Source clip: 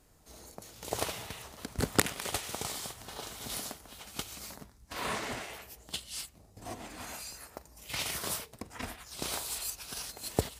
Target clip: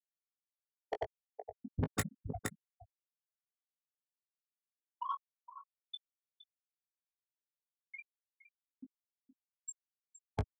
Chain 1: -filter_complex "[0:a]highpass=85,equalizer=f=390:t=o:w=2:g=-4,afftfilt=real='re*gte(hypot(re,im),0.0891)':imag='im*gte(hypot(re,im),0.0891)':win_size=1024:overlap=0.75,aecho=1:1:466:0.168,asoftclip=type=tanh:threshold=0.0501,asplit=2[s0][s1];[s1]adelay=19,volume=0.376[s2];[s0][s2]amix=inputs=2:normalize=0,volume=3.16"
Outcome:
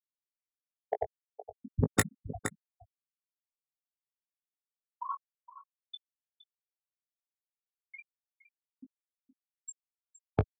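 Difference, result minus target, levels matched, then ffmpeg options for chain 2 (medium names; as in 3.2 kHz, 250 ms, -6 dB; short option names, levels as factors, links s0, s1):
saturation: distortion -6 dB
-filter_complex "[0:a]highpass=85,equalizer=f=390:t=o:w=2:g=-4,afftfilt=real='re*gte(hypot(re,im),0.0891)':imag='im*gte(hypot(re,im),0.0891)':win_size=1024:overlap=0.75,aecho=1:1:466:0.168,asoftclip=type=tanh:threshold=0.0126,asplit=2[s0][s1];[s1]adelay=19,volume=0.376[s2];[s0][s2]amix=inputs=2:normalize=0,volume=3.16"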